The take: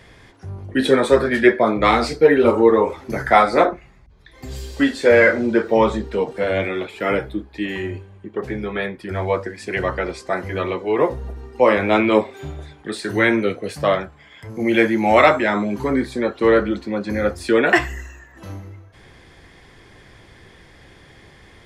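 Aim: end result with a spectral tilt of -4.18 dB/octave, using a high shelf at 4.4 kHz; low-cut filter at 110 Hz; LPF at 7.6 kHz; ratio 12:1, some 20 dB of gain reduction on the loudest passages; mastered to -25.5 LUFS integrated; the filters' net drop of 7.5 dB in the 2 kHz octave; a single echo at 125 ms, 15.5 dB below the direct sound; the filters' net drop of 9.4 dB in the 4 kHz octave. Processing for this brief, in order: high-pass 110 Hz; low-pass 7.6 kHz; peaking EQ 2 kHz -7 dB; peaking EQ 4 kHz -7 dB; treble shelf 4.4 kHz -4.5 dB; compression 12:1, threshold -29 dBFS; delay 125 ms -15.5 dB; trim +9 dB

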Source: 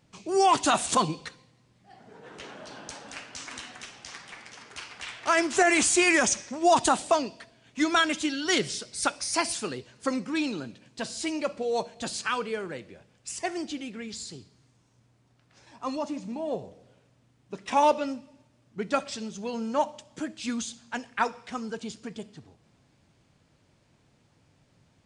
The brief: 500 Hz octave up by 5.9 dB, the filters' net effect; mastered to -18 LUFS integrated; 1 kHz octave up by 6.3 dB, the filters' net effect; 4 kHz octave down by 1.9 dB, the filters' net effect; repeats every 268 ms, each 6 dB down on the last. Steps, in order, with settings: peaking EQ 500 Hz +6 dB; peaking EQ 1 kHz +6 dB; peaking EQ 4 kHz -3 dB; feedback delay 268 ms, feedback 50%, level -6 dB; trim +4.5 dB

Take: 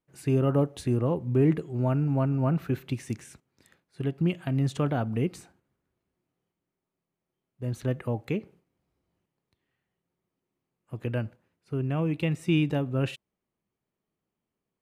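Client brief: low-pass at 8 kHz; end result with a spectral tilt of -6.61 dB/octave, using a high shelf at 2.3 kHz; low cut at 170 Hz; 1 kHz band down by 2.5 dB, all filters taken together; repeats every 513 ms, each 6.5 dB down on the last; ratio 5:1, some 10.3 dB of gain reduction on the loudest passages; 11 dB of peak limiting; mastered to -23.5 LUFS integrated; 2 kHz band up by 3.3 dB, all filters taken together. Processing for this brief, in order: high-pass 170 Hz; low-pass 8 kHz; peaking EQ 1 kHz -5 dB; peaking EQ 2 kHz +8 dB; treble shelf 2.3 kHz -3.5 dB; compression 5:1, threshold -31 dBFS; peak limiter -28.5 dBFS; feedback delay 513 ms, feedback 47%, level -6.5 dB; trim +16 dB

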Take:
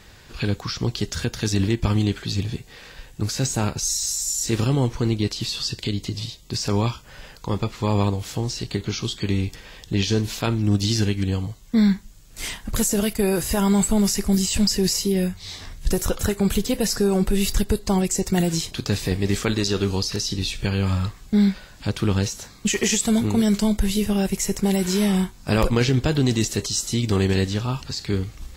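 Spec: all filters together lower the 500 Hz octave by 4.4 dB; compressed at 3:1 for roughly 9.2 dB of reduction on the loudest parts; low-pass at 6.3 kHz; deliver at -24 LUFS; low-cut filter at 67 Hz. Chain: high-pass 67 Hz; low-pass 6.3 kHz; peaking EQ 500 Hz -6 dB; compression 3:1, threshold -29 dBFS; trim +7.5 dB

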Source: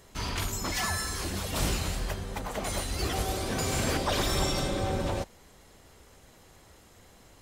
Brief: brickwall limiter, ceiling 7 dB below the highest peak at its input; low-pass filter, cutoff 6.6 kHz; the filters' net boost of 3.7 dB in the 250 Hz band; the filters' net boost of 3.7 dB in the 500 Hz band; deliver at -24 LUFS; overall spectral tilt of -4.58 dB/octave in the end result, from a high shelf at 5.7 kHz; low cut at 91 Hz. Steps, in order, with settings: high-pass 91 Hz; low-pass 6.6 kHz; peaking EQ 250 Hz +4 dB; peaking EQ 500 Hz +3.5 dB; treble shelf 5.7 kHz -3.5 dB; trim +8.5 dB; peak limiter -13.5 dBFS

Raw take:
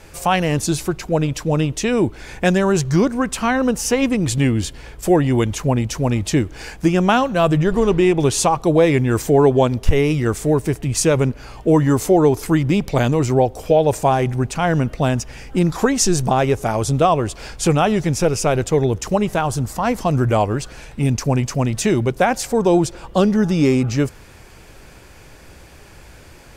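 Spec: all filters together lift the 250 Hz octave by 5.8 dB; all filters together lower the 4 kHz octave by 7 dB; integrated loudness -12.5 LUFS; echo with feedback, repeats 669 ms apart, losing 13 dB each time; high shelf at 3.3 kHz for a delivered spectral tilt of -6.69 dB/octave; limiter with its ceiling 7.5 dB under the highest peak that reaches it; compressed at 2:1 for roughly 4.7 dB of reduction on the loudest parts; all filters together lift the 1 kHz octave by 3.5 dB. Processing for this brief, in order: peaking EQ 250 Hz +7.5 dB; peaking EQ 1 kHz +5 dB; treble shelf 3.3 kHz -6 dB; peaking EQ 4 kHz -5.5 dB; compression 2:1, threshold -14 dBFS; peak limiter -10.5 dBFS; feedback delay 669 ms, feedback 22%, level -13 dB; trim +7.5 dB

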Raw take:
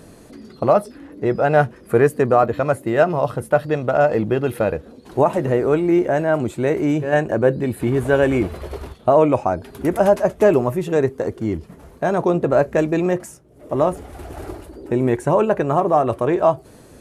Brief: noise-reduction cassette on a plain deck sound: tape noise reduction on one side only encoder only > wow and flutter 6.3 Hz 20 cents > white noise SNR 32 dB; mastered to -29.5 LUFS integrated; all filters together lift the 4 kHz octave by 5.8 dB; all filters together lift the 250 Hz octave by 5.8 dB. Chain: peaking EQ 250 Hz +8 dB; peaking EQ 4 kHz +8 dB; tape noise reduction on one side only encoder only; wow and flutter 6.3 Hz 20 cents; white noise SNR 32 dB; trim -13.5 dB

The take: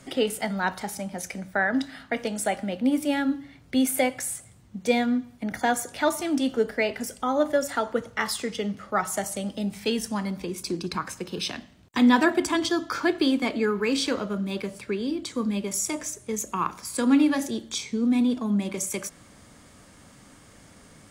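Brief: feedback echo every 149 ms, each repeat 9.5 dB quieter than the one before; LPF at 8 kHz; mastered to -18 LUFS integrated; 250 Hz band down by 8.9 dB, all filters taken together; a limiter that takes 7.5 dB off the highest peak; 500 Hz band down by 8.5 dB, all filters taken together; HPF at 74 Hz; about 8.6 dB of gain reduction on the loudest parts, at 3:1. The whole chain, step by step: high-pass 74 Hz; low-pass 8 kHz; peaking EQ 250 Hz -8 dB; peaking EQ 500 Hz -8.5 dB; compression 3:1, threshold -30 dBFS; peak limiter -24.5 dBFS; feedback delay 149 ms, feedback 33%, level -9.5 dB; trim +17.5 dB

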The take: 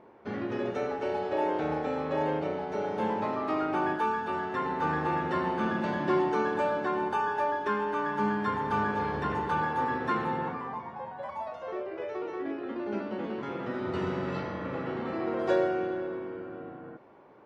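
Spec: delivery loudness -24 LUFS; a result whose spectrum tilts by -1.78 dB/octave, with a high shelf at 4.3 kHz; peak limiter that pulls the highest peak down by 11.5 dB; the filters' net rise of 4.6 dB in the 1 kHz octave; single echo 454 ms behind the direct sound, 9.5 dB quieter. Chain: peaking EQ 1 kHz +5.5 dB; treble shelf 4.3 kHz -3.5 dB; peak limiter -23.5 dBFS; delay 454 ms -9.5 dB; trim +8 dB

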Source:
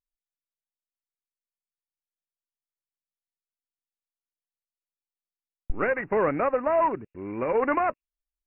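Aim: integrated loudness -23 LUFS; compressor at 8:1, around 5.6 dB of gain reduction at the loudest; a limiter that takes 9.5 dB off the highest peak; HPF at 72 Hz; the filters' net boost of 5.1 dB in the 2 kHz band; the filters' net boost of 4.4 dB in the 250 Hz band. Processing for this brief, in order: high-pass 72 Hz; peaking EQ 250 Hz +5.5 dB; peaking EQ 2 kHz +6.5 dB; compression 8:1, threshold -23 dBFS; trim +10 dB; peak limiter -14 dBFS

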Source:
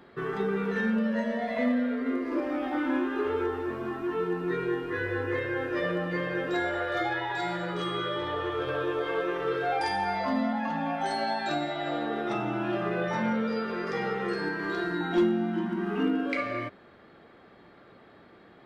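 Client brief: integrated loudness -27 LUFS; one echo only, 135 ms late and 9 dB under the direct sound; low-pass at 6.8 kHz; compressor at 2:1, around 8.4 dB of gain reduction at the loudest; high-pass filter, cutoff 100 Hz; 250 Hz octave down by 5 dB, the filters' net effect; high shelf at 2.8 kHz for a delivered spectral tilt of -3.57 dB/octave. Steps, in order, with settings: high-pass 100 Hz; low-pass 6.8 kHz; peaking EQ 250 Hz -6.5 dB; treble shelf 2.8 kHz -4.5 dB; compression 2:1, threshold -38 dBFS; delay 135 ms -9 dB; trim +10 dB

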